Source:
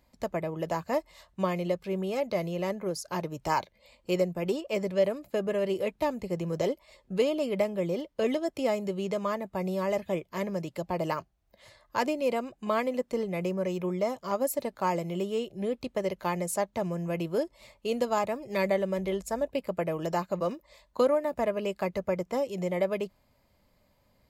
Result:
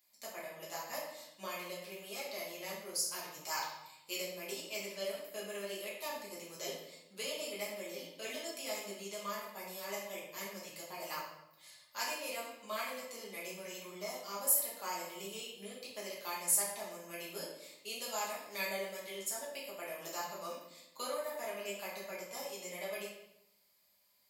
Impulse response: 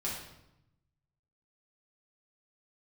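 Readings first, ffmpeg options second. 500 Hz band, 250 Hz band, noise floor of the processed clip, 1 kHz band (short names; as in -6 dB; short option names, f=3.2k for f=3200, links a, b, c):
-14.5 dB, -19.5 dB, -66 dBFS, -10.5 dB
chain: -filter_complex "[0:a]aderivative[a];[1:a]atrim=start_sample=2205[b];[a][b]afir=irnorm=-1:irlink=0,volume=3.5dB"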